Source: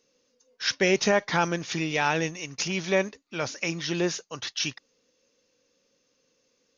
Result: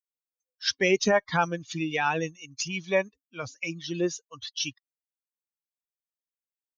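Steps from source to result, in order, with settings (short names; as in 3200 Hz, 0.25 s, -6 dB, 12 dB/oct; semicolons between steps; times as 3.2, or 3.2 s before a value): per-bin expansion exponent 2; gain +2.5 dB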